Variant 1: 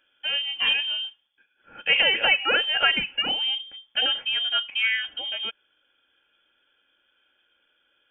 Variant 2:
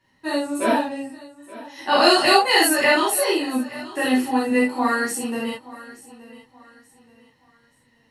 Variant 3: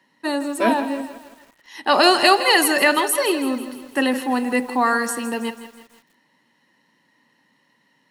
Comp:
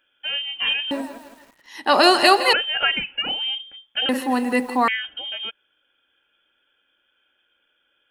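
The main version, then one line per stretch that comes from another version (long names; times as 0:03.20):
1
0:00.91–0:02.53: punch in from 3
0:04.09–0:04.88: punch in from 3
not used: 2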